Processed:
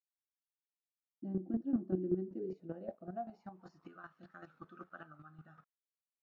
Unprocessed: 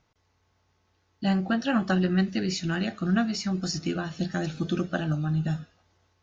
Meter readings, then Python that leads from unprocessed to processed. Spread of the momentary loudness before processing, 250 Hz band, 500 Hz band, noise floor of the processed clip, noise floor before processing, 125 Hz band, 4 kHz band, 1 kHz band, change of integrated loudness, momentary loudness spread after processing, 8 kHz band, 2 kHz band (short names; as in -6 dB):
6 LU, -14.0 dB, -9.5 dB, under -85 dBFS, -71 dBFS, -20.0 dB, under -40 dB, -15.5 dB, -12.0 dB, 20 LU, n/a, -24.5 dB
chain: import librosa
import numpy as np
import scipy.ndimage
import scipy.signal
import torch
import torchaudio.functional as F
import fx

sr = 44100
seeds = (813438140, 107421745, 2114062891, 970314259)

y = np.where(np.abs(x) >= 10.0 ** (-44.0 / 20.0), x, 0.0)
y = fx.filter_sweep_bandpass(y, sr, from_hz=320.0, to_hz=1300.0, start_s=2.11, end_s=4.03, q=6.4)
y = fx.chopper(y, sr, hz=5.2, depth_pct=65, duty_pct=15)
y = fx.tilt_shelf(y, sr, db=7.5, hz=790.0)
y = y * 10.0 ** (1.5 / 20.0)